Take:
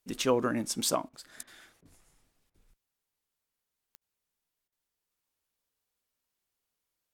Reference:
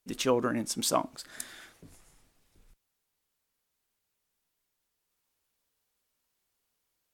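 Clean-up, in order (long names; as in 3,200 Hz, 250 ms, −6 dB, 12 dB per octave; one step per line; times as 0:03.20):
click removal
repair the gap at 0:01.09/0:01.43/0:01.81/0:02.50/0:03.97/0:04.68, 42 ms
level 0 dB, from 0:00.95 +5 dB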